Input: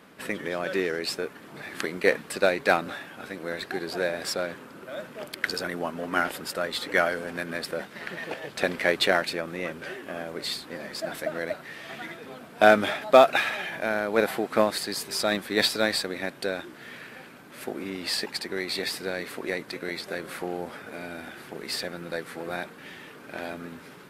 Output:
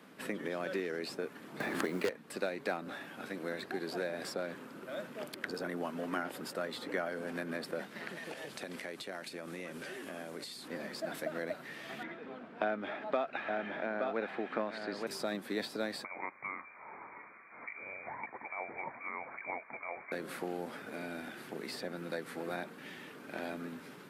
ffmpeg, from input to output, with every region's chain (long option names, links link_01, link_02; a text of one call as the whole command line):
ffmpeg -i in.wav -filter_complex "[0:a]asettb=1/sr,asplit=3[link_01][link_02][link_03];[link_01]atrim=end=1.604[link_04];[link_02]atrim=start=1.6:end=2.09,asetpts=PTS-STARTPTS,afade=type=in:duration=0.004:curve=qsin,afade=type=out:start_time=0.486:duration=0.004:curve=qsin,aeval=exprs='0.473*sin(PI/2*2.51*val(0)/0.473)':channel_layout=same,acrusher=bits=5:mode=log:mix=0:aa=0.000001[link_05];[link_03]atrim=start=2.086[link_06];[link_04][link_05]acrossfade=duration=0.004:curve1=hsin:curve2=qsin[link_07];[link_07][link_06]acrossfade=duration=0.004:curve1=qsin:curve2=hsin,asettb=1/sr,asplit=3[link_08][link_09][link_10];[link_08]atrim=end=8.084[link_11];[link_09]atrim=start=8.08:end=10.68,asetpts=PTS-STARTPTS,afade=type=in:duration=0.004:curve=qsin,afade=type=out:start_time=2.596:duration=0.004:curve=qsin,lowpass=frequency=12000:width=0.5412,lowpass=frequency=12000:width=1.3066,highshelf=frequency=5000:gain=11.5,acompressor=threshold=-35dB:ratio=4:attack=3.2:release=140:knee=1:detection=peak[link_12];[link_10]atrim=start=10.676[link_13];[link_11][link_12]acrossfade=duration=0.004:curve1=hsin:curve2=qsin[link_14];[link_14][link_13]acrossfade=duration=0.004:curve1=qsin:curve2=hsin,asettb=1/sr,asplit=3[link_15][link_16][link_17];[link_15]atrim=end=12.034[link_18];[link_16]atrim=start=12.03:end=15.07,asetpts=PTS-STARTPTS,afade=type=in:duration=0.004:curve=qsin,afade=type=out:start_time=3.036:duration=0.004:curve=qsin,lowpass=2500,equalizer=frequency=130:width=2.4:gain=-8,aecho=1:1:869:0.355,atrim=end_sample=134064[link_19];[link_17]atrim=start=15.066[link_20];[link_18][link_19]acrossfade=duration=0.004:curve1=hsin:curve2=qsin[link_21];[link_21][link_20]acrossfade=duration=0.004:curve1=qsin:curve2=hsin,asettb=1/sr,asplit=3[link_22][link_23][link_24];[link_22]atrim=end=16.044[link_25];[link_23]atrim=start=16.04:end=20.12,asetpts=PTS-STARTPTS,afade=type=in:duration=0.004:curve=qsin,afade=type=out:start_time=4.076:duration=0.004:curve=qsin,highpass=frequency=350:width=0.5412,highpass=frequency=350:width=1.3066,lowpass=frequency=2300:width_type=q:width=0.5098,lowpass=frequency=2300:width_type=q:width=0.6013,lowpass=frequency=2300:width_type=q:width=0.9,lowpass=frequency=2300:width_type=q:width=2.563,afreqshift=-2700[link_26];[link_24]atrim=start=20.116[link_27];[link_25][link_26]acrossfade=duration=0.004:curve1=hsin:curve2=qsin[link_28];[link_28][link_27]acrossfade=duration=0.004:curve1=qsin:curve2=hsin,highpass=110,equalizer=frequency=240:width=1.4:gain=3.5,acrossover=split=140|1300[link_29][link_30][link_31];[link_29]acompressor=threshold=-55dB:ratio=4[link_32];[link_30]acompressor=threshold=-29dB:ratio=4[link_33];[link_31]acompressor=threshold=-39dB:ratio=4[link_34];[link_32][link_33][link_34]amix=inputs=3:normalize=0,volume=-5dB" out.wav